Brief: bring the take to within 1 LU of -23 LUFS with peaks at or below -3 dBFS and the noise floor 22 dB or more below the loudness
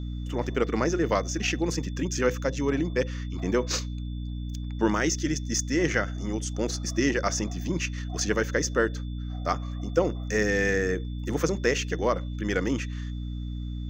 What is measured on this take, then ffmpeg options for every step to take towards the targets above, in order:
hum 60 Hz; harmonics up to 300 Hz; hum level -30 dBFS; steady tone 3500 Hz; tone level -53 dBFS; loudness -28.0 LUFS; peak -9.0 dBFS; loudness target -23.0 LUFS
-> -af "bandreject=f=60:t=h:w=6,bandreject=f=120:t=h:w=6,bandreject=f=180:t=h:w=6,bandreject=f=240:t=h:w=6,bandreject=f=300:t=h:w=6"
-af "bandreject=f=3.5k:w=30"
-af "volume=5dB"

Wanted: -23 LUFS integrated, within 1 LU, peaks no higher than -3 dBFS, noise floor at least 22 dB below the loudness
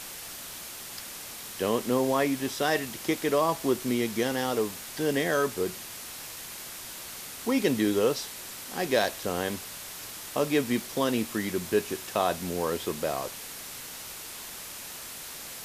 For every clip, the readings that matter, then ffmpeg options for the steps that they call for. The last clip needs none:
noise floor -41 dBFS; noise floor target -52 dBFS; loudness -30.0 LUFS; peak -11.5 dBFS; loudness target -23.0 LUFS
-> -af "afftdn=nr=11:nf=-41"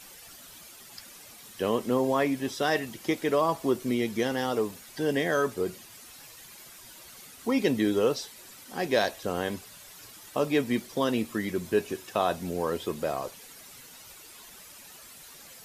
noise floor -49 dBFS; noise floor target -51 dBFS
-> -af "afftdn=nr=6:nf=-49"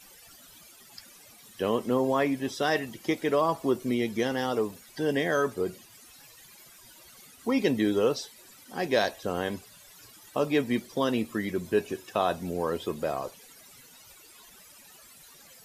noise floor -53 dBFS; loudness -28.5 LUFS; peak -11.5 dBFS; loudness target -23.0 LUFS
-> -af "volume=5.5dB"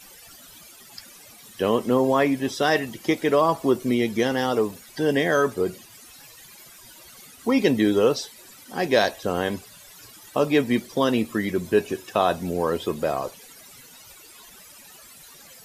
loudness -23.0 LUFS; peak -6.0 dBFS; noise floor -48 dBFS

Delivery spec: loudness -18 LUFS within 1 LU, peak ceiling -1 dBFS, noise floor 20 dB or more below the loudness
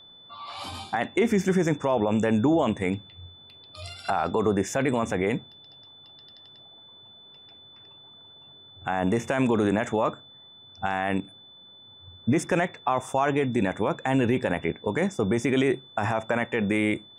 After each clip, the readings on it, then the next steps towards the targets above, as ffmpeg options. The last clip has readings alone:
steady tone 3500 Hz; tone level -48 dBFS; loudness -26.0 LUFS; peak -12.5 dBFS; loudness target -18.0 LUFS
-> -af "bandreject=f=3.5k:w=30"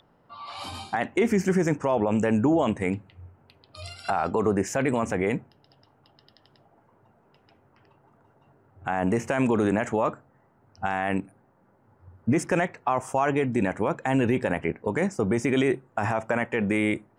steady tone none; loudness -26.0 LUFS; peak -12.5 dBFS; loudness target -18.0 LUFS
-> -af "volume=8dB"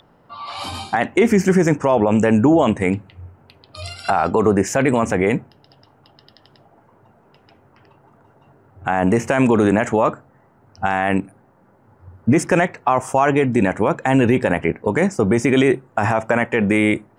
loudness -18.0 LUFS; peak -4.5 dBFS; noise floor -55 dBFS

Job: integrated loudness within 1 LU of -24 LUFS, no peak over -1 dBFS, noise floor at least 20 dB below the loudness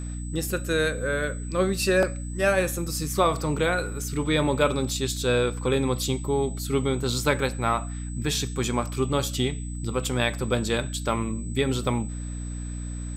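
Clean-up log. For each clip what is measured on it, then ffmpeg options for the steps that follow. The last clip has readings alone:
hum 60 Hz; harmonics up to 300 Hz; hum level -30 dBFS; steady tone 8000 Hz; tone level -43 dBFS; loudness -26.0 LUFS; peak -8.0 dBFS; loudness target -24.0 LUFS
-> -af "bandreject=f=60:t=h:w=4,bandreject=f=120:t=h:w=4,bandreject=f=180:t=h:w=4,bandreject=f=240:t=h:w=4,bandreject=f=300:t=h:w=4"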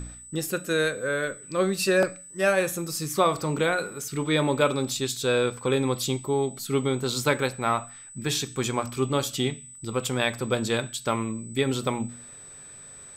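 hum none; steady tone 8000 Hz; tone level -43 dBFS
-> -af "bandreject=f=8k:w=30"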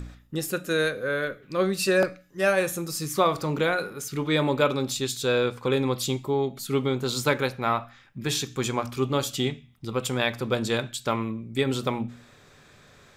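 steady tone none; loudness -26.5 LUFS; peak -9.0 dBFS; loudness target -24.0 LUFS
-> -af "volume=2.5dB"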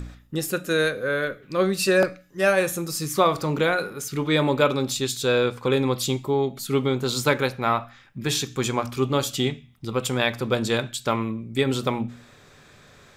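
loudness -24.0 LUFS; peak -6.5 dBFS; noise floor -52 dBFS

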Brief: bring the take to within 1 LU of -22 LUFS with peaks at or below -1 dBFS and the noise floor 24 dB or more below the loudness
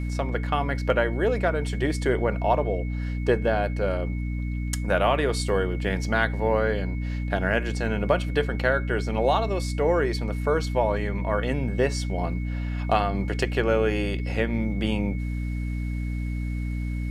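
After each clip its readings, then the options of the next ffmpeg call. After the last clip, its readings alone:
hum 60 Hz; harmonics up to 300 Hz; hum level -26 dBFS; steady tone 2200 Hz; tone level -44 dBFS; loudness -26.0 LUFS; peak -6.5 dBFS; loudness target -22.0 LUFS
-> -af "bandreject=f=60:t=h:w=4,bandreject=f=120:t=h:w=4,bandreject=f=180:t=h:w=4,bandreject=f=240:t=h:w=4,bandreject=f=300:t=h:w=4"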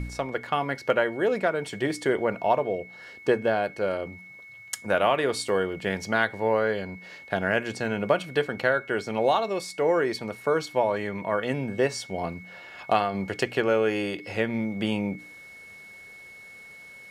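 hum none; steady tone 2200 Hz; tone level -44 dBFS
-> -af "bandreject=f=2.2k:w=30"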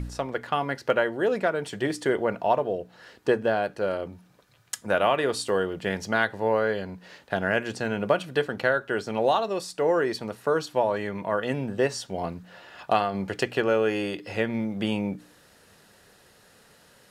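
steady tone none; loudness -26.5 LUFS; peak -8.0 dBFS; loudness target -22.0 LUFS
-> -af "volume=4.5dB"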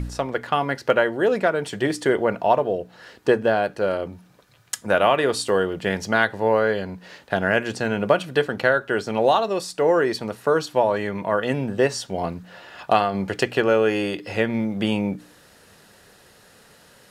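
loudness -22.0 LUFS; peak -3.5 dBFS; noise floor -53 dBFS

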